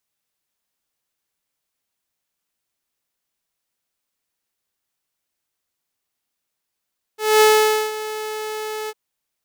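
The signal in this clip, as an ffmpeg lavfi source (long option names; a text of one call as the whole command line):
ffmpeg -f lavfi -i "aevalsrc='0.447*(2*mod(431*t,1)-1)':duration=1.753:sample_rate=44100,afade=type=in:duration=0.228,afade=type=out:start_time=0.228:duration=0.503:silence=0.158,afade=type=out:start_time=1.71:duration=0.043" out.wav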